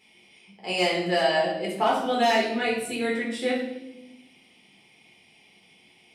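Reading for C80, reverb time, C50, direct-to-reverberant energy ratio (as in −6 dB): 6.5 dB, 0.90 s, 3.5 dB, −4.5 dB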